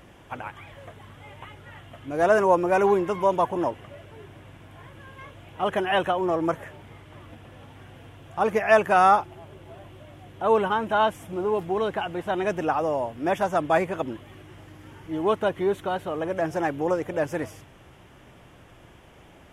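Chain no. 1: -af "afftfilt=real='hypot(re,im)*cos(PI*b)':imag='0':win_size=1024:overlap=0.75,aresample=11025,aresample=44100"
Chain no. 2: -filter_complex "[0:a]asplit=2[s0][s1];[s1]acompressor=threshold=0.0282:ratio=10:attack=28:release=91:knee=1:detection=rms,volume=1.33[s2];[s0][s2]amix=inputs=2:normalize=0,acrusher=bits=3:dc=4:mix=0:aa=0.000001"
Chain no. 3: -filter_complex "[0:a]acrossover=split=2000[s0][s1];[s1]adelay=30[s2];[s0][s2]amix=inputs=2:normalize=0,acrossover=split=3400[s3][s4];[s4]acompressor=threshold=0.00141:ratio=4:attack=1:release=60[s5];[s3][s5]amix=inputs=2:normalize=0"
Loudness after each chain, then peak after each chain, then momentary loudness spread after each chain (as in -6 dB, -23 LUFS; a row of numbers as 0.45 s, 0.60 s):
-28.5 LUFS, -23.5 LUFS, -24.5 LUFS; -6.5 dBFS, -4.0 dBFS, -6.0 dBFS; 19 LU, 21 LU, 17 LU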